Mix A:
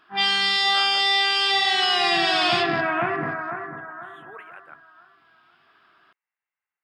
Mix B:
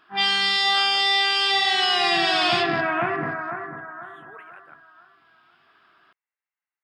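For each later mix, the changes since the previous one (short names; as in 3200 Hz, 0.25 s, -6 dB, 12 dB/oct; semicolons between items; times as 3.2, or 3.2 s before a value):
speech -3.5 dB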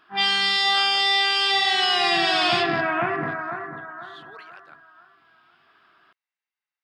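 speech: remove Butterworth band-stop 4700 Hz, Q 0.77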